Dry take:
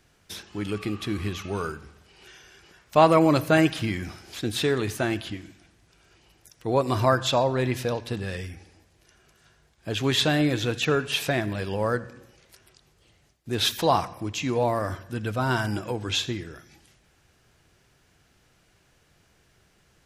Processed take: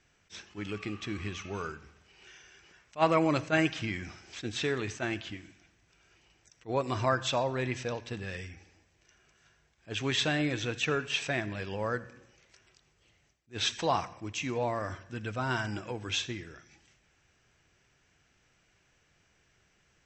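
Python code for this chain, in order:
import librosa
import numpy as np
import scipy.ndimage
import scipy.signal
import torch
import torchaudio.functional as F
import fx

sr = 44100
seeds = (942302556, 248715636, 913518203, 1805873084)

y = scipy.signal.sosfilt(scipy.signal.cheby1(6, 6, 8000.0, 'lowpass', fs=sr, output='sos'), x)
y = fx.attack_slew(y, sr, db_per_s=380.0)
y = y * 10.0 ** (-2.0 / 20.0)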